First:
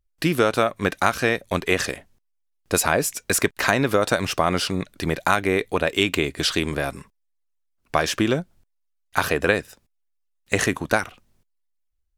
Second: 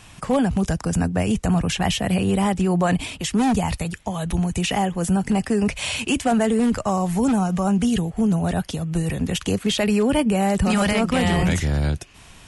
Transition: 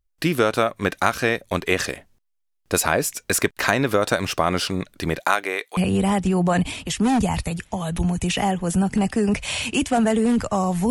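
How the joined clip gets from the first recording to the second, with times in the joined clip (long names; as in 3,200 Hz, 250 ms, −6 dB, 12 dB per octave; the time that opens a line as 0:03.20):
first
0:05.19–0:05.77: high-pass filter 260 Hz → 1,100 Hz
0:05.77: continue with second from 0:02.11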